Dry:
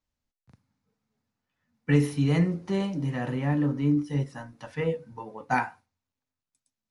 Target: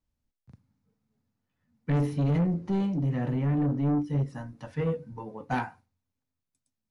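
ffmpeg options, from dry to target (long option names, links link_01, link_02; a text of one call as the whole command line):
ffmpeg -i in.wav -filter_complex "[0:a]lowshelf=frequency=430:gain=10.5,asoftclip=type=tanh:threshold=-17dB,asettb=1/sr,asplit=3[link_01][link_02][link_03];[link_01]atrim=end=2.014[link_04];[link_02]atrim=start=2.01:end=4.28,asetpts=PTS-STARTPTS,afade=type=in:duration=0.004:curve=qsin,afade=type=out:start_time=2.266:duration=0.004:curve=qsin,highshelf=frequency=6700:gain=-7.5[link_05];[link_03]atrim=start=4.276[link_06];[link_04][link_05]acrossfade=duration=0.004:curve1=hsin:curve2=qsin[link_07];[link_07][link_06]acrossfade=duration=0.004:curve1=qsin:curve2=hsin,volume=-4.5dB" out.wav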